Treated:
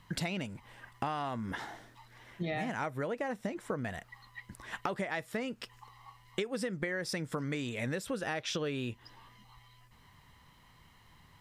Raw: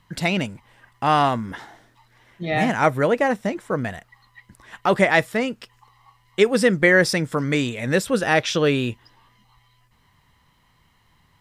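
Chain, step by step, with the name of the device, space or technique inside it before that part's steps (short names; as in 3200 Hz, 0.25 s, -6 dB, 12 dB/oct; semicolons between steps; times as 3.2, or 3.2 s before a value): serial compression, leveller first (compressor 2.5:1, threshold -20 dBFS, peak gain reduction 7 dB; compressor 6:1, threshold -33 dBFS, peak gain reduction 15.5 dB)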